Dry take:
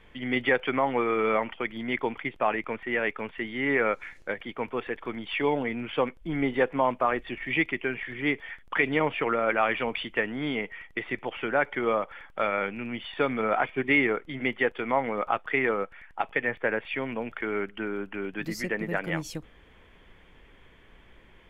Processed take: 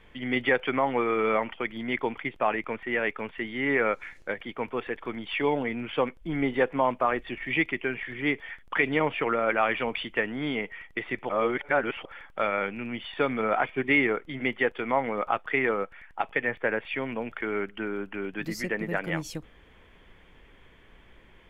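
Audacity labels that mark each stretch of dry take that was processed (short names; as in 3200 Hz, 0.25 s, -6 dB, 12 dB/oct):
11.290000	12.050000	reverse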